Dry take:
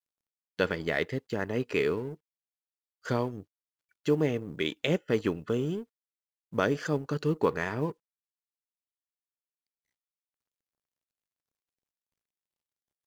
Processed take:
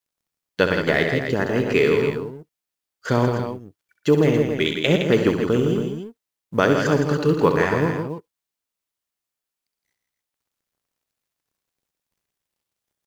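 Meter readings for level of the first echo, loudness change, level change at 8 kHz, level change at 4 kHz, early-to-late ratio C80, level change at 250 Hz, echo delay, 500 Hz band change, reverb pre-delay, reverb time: −8.0 dB, +10.0 dB, can't be measured, +10.5 dB, no reverb audible, +10.5 dB, 66 ms, +10.5 dB, no reverb audible, no reverb audible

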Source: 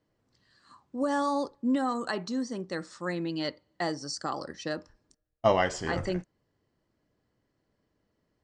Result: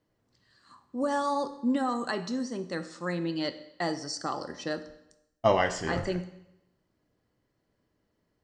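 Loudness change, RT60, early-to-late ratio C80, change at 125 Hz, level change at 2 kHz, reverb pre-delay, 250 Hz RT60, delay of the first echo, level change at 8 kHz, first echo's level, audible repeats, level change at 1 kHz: 0.0 dB, 0.85 s, 15.0 dB, +1.0 dB, +0.5 dB, 10 ms, 0.90 s, no echo audible, +0.5 dB, no echo audible, no echo audible, +0.5 dB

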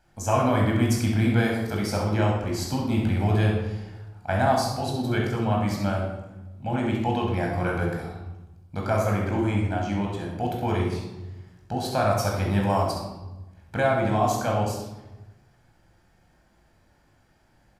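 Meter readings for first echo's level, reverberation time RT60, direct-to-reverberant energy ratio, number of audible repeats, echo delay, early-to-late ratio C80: −7.5 dB, 1.0 s, −1.5 dB, 1, 66 ms, 5.0 dB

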